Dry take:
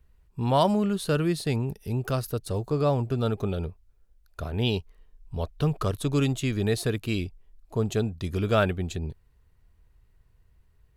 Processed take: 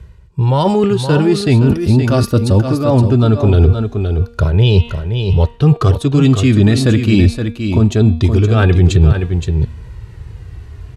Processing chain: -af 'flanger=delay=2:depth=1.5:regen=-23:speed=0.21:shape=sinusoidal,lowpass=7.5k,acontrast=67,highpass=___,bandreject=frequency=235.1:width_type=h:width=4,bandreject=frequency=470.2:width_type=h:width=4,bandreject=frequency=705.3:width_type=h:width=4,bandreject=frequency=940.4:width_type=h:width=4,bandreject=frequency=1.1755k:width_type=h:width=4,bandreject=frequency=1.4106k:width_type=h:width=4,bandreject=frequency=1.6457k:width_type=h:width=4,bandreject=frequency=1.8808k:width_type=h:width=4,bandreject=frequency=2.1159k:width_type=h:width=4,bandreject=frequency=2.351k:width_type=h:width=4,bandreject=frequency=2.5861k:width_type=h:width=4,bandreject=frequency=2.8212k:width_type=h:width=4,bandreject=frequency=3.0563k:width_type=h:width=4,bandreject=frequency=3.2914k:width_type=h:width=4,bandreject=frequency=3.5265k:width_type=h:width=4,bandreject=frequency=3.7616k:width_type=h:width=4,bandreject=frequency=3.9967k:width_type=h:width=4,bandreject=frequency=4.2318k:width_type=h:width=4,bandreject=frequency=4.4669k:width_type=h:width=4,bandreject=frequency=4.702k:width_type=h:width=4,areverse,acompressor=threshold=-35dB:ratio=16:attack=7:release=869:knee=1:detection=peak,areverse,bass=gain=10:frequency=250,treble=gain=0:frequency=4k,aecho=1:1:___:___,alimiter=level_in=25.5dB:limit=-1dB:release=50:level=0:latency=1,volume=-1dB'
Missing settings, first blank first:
92, 520, 0.398